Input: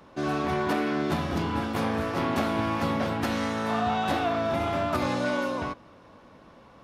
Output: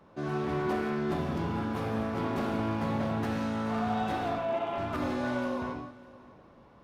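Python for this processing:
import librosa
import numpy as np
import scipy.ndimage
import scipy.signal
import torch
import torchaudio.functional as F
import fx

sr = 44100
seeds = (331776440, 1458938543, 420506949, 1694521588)

y = fx.cabinet(x, sr, low_hz=350.0, low_slope=12, high_hz=3200.0, hz=(910.0, 1400.0, 2900.0), db=(4, -6, 8), at=(4.38, 4.78))
y = 10.0 ** (-21.0 / 20.0) * (np.abs((y / 10.0 ** (-21.0 / 20.0) + 3.0) % 4.0 - 2.0) - 1.0)
y = fx.high_shelf(y, sr, hz=2000.0, db=-8.0)
y = y + 10.0 ** (-21.0 / 20.0) * np.pad(y, (int(605 * sr / 1000.0), 0))[:len(y)]
y = fx.rev_gated(y, sr, seeds[0], gate_ms=200, shape='flat', drr_db=3.0)
y = y * librosa.db_to_amplitude(-5.0)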